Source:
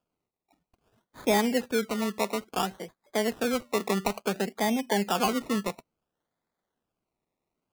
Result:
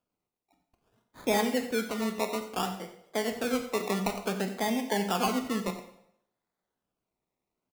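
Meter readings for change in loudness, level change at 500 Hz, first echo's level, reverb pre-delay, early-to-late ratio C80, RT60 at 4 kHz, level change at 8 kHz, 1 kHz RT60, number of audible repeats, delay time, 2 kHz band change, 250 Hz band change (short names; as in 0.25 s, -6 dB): -2.0 dB, -2.5 dB, -15.0 dB, 6 ms, 11.0 dB, 0.65 s, -2.0 dB, 0.75 s, 1, 90 ms, -2.0 dB, -2.0 dB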